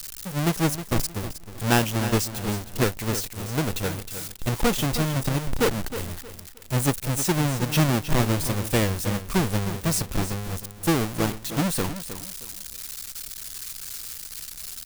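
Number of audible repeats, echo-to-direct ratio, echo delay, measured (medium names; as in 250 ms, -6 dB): 3, -11.0 dB, 313 ms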